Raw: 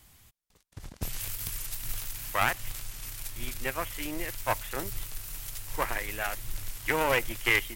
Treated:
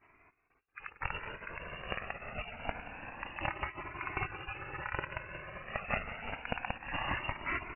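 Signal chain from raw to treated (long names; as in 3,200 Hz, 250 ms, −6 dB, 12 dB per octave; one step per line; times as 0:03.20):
loose part that buzzes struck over −37 dBFS, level −17 dBFS
gate on every frequency bin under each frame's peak −20 dB weak
0:03.42–0:05.63: comb filter 4.4 ms, depth 58%
frequency shifter −55 Hz
slap from a distant wall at 31 metres, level −13 dB
voice inversion scrambler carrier 2,800 Hz
flanger whose copies keep moving one way rising 0.27 Hz
level +11 dB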